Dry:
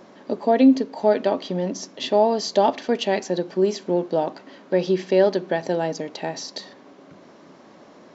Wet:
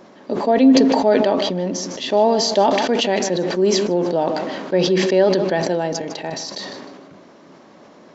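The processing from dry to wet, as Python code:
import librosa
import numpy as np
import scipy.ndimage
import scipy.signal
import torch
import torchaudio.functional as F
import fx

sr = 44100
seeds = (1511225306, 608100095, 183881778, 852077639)

y = fx.level_steps(x, sr, step_db=9, at=(5.93, 6.47))
y = fx.echo_feedback(y, sr, ms=154, feedback_pct=32, wet_db=-16)
y = fx.sustainer(y, sr, db_per_s=29.0)
y = F.gain(torch.from_numpy(y), 1.5).numpy()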